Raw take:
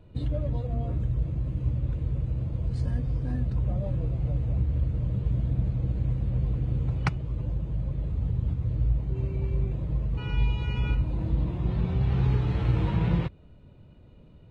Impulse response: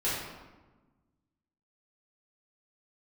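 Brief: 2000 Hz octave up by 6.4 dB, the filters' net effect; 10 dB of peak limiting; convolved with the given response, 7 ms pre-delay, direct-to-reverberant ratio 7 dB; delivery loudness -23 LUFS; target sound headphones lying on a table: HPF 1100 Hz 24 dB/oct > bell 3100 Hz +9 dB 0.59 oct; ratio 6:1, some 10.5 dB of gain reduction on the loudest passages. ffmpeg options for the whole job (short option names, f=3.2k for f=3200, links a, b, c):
-filter_complex "[0:a]equalizer=f=2k:t=o:g=5,acompressor=threshold=-31dB:ratio=6,alimiter=level_in=6.5dB:limit=-24dB:level=0:latency=1,volume=-6.5dB,asplit=2[a][b];[1:a]atrim=start_sample=2205,adelay=7[c];[b][c]afir=irnorm=-1:irlink=0,volume=-16dB[d];[a][d]amix=inputs=2:normalize=0,highpass=f=1.1k:w=0.5412,highpass=f=1.1k:w=1.3066,equalizer=f=3.1k:t=o:w=0.59:g=9,volume=27dB"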